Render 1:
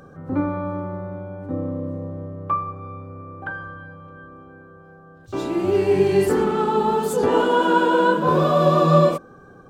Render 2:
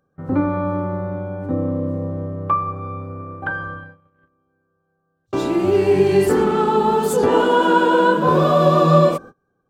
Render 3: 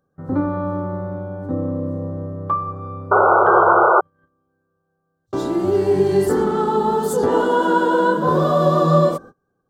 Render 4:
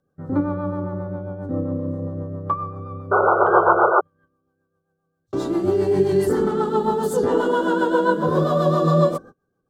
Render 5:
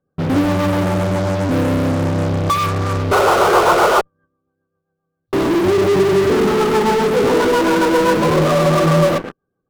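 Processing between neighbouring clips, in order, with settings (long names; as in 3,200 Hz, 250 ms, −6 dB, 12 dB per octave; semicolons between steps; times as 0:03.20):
noise gate −37 dBFS, range −30 dB; in parallel at 0 dB: downward compressor, threshold −24 dBFS, peak gain reduction 13.5 dB
sound drawn into the spectrogram noise, 0:03.11–0:04.01, 340–1,500 Hz −11 dBFS; parametric band 2,500 Hz −14.5 dB 0.43 octaves; level −1.5 dB
rotating-speaker cabinet horn 7.5 Hz
Gaussian smoothing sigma 2.6 samples; in parallel at −4 dB: fuzz pedal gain 42 dB, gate −47 dBFS; on the sum: level −1 dB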